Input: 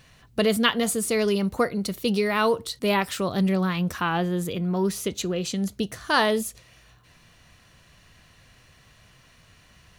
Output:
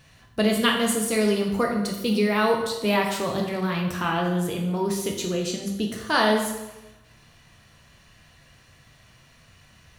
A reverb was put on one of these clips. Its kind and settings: plate-style reverb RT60 1 s, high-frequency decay 0.8×, DRR 0.5 dB; trim -2 dB

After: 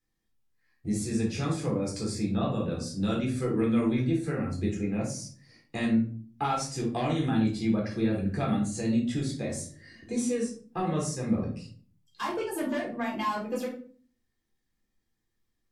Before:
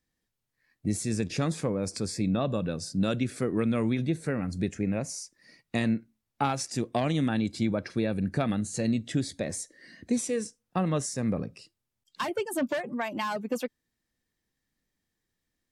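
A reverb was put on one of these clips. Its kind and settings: simulated room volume 360 m³, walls furnished, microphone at 3.9 m; trim -7.5 dB

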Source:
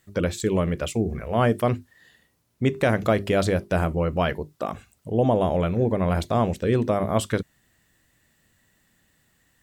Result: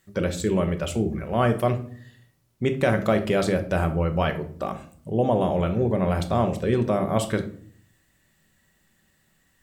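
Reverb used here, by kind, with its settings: simulated room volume 600 m³, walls furnished, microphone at 1.1 m; trim -1.5 dB

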